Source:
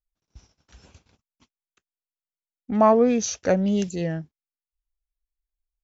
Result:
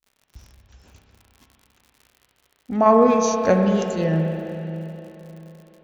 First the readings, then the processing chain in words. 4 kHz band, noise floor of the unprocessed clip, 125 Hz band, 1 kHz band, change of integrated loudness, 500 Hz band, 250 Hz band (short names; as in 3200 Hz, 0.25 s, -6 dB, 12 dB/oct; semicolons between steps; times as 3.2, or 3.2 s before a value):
+0.5 dB, under -85 dBFS, +6.0 dB, +4.5 dB, +2.0 dB, +3.5 dB, +2.5 dB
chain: crackle 80/s -41 dBFS; random-step tremolo; spring tank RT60 3.6 s, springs 31/43 ms, chirp 65 ms, DRR 2.5 dB; gain +3.5 dB